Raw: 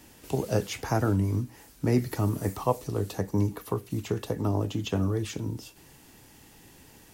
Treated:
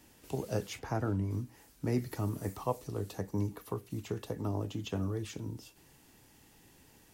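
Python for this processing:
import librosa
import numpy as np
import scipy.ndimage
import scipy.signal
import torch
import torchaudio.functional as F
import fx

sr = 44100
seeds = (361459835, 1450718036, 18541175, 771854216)

y = fx.high_shelf(x, sr, hz=4900.0, db=-10.5, at=(0.79, 1.31))
y = y * 10.0 ** (-7.5 / 20.0)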